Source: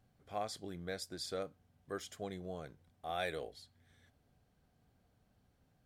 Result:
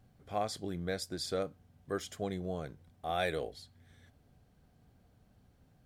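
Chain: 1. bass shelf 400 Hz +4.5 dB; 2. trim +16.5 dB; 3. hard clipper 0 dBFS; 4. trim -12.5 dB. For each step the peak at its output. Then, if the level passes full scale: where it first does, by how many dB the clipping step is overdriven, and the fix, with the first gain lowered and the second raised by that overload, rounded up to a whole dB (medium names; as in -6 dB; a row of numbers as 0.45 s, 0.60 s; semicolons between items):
-22.5 dBFS, -6.0 dBFS, -6.0 dBFS, -18.5 dBFS; nothing clips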